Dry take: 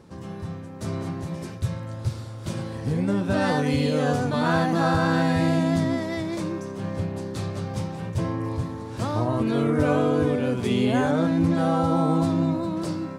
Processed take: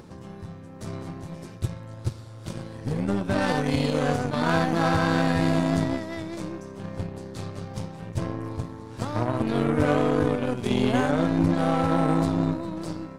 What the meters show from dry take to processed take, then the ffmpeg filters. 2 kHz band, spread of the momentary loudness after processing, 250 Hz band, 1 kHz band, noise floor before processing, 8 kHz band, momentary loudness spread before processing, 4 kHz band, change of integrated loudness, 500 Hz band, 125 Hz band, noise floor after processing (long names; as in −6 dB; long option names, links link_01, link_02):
−0.5 dB, 15 LU, −2.0 dB, −0.5 dB, −37 dBFS, −1.0 dB, 10 LU, −0.5 dB, −1.0 dB, −1.5 dB, −2.0 dB, −42 dBFS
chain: -af "acompressor=mode=upward:threshold=-30dB:ratio=2.5,aeval=exprs='0.376*(cos(1*acos(clip(val(0)/0.376,-1,1)))-cos(1*PI/2))+0.0299*(cos(7*acos(clip(val(0)/0.376,-1,1)))-cos(7*PI/2))+0.0119*(cos(8*acos(clip(val(0)/0.376,-1,1)))-cos(8*PI/2))':channel_layout=same"